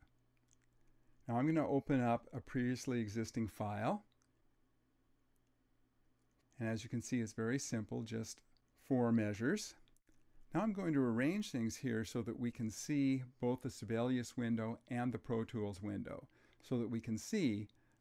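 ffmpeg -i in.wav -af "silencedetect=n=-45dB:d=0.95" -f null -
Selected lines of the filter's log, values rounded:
silence_start: 0.00
silence_end: 1.29 | silence_duration: 1.29
silence_start: 3.97
silence_end: 6.60 | silence_duration: 2.63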